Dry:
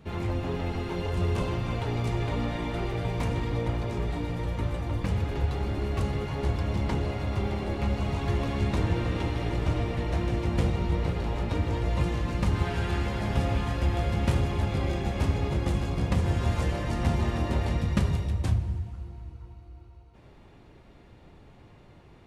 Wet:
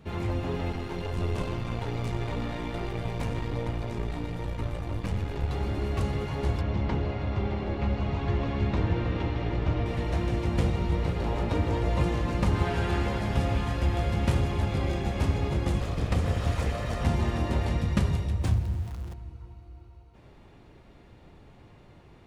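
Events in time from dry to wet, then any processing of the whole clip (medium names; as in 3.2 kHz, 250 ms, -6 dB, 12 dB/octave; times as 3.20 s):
0.72–5.50 s: partial rectifier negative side -7 dB
6.61–9.86 s: distance through air 140 m
11.20–13.18 s: peaking EQ 560 Hz +3.5 dB 2.7 oct
15.80–17.04 s: comb filter that takes the minimum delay 1.6 ms
18.41–19.14 s: jump at every zero crossing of -40 dBFS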